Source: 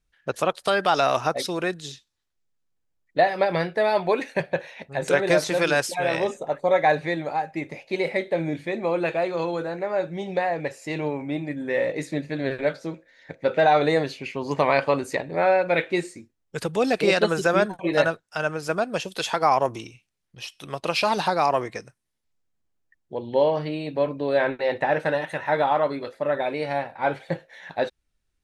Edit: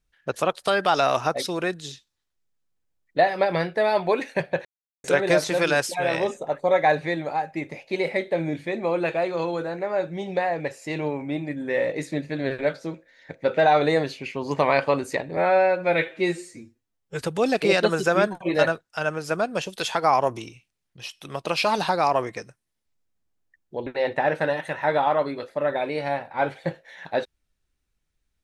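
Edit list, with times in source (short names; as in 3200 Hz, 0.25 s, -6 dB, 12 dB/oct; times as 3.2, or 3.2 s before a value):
4.65–5.04 mute
15.37–16.6 stretch 1.5×
23.25–24.51 cut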